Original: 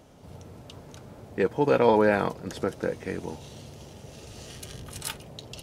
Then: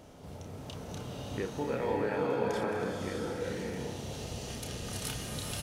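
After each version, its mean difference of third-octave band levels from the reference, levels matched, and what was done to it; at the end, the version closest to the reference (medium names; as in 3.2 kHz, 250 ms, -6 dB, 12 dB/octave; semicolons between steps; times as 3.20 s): 9.5 dB: doubling 31 ms -5.5 dB; compression 2.5:1, threshold -39 dBFS, peak gain reduction 16 dB; swelling reverb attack 630 ms, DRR -3 dB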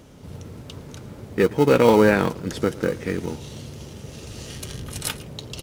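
2.0 dB: peaking EQ 710 Hz -7.5 dB 0.73 oct; in parallel at -11.5 dB: sample-and-hold 26×; on the sum: delay 112 ms -22 dB; trim +6 dB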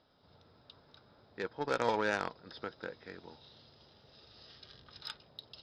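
6.0 dB: rippled Chebyshev low-pass 5.2 kHz, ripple 9 dB; Chebyshev shaper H 3 -24 dB, 7 -27 dB, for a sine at -12.5 dBFS; tone controls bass -3 dB, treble +14 dB; trim -2.5 dB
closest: second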